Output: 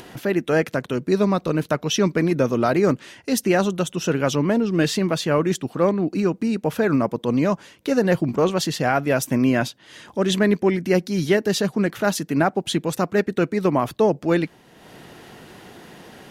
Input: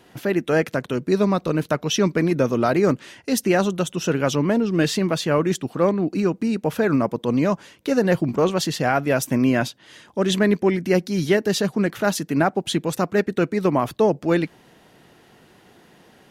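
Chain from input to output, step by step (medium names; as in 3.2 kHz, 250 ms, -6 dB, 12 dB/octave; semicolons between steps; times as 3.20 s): upward compressor, threshold -33 dBFS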